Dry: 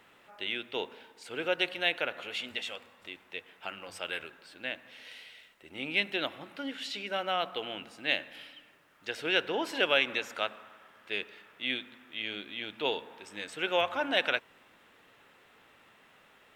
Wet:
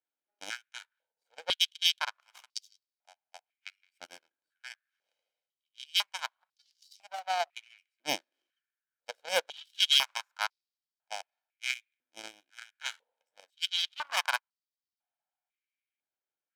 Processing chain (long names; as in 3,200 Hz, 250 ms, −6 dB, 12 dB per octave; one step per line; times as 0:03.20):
lower of the sound and its delayed copy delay 1.3 ms
harmonic generator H 2 −17 dB, 4 −32 dB, 7 −17 dB, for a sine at −12.5 dBFS
high-pass on a step sequencer 2 Hz 340–4,800 Hz